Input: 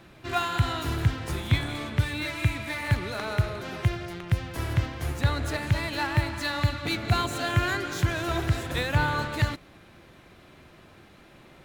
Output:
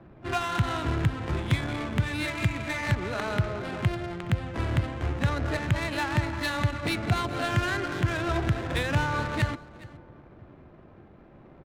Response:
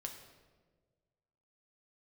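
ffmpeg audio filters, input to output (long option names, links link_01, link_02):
-filter_complex "[0:a]asplit=2[link_01][link_02];[link_02]asetrate=88200,aresample=44100,atempo=0.5,volume=-16dB[link_03];[link_01][link_03]amix=inputs=2:normalize=0,acrossover=split=120|5500[link_04][link_05][link_06];[link_04]acompressor=threshold=-29dB:ratio=4[link_07];[link_05]acompressor=threshold=-27dB:ratio=4[link_08];[link_06]acompressor=threshold=-47dB:ratio=4[link_09];[link_07][link_08][link_09]amix=inputs=3:normalize=0,asplit=2[link_10][link_11];[link_11]adelay=991.3,volume=-25dB,highshelf=frequency=4000:gain=-22.3[link_12];[link_10][link_12]amix=inputs=2:normalize=0,adynamicsmooth=sensitivity=6.5:basefreq=860,asplit=2[link_13][link_14];[link_14]aecho=0:1:418:0.1[link_15];[link_13][link_15]amix=inputs=2:normalize=0,volume=2.5dB"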